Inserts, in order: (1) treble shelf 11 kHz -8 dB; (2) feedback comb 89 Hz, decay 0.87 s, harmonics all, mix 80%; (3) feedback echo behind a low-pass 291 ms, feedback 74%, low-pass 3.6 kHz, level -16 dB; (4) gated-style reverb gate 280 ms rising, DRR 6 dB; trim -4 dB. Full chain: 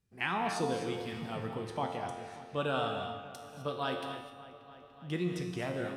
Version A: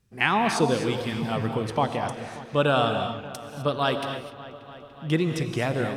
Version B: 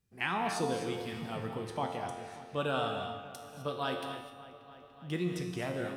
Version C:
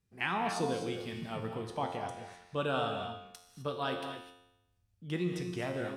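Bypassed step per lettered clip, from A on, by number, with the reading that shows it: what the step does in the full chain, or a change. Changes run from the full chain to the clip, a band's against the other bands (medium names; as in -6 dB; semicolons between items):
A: 2, loudness change +10.5 LU; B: 1, 8 kHz band +2.0 dB; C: 3, momentary loudness spread change -1 LU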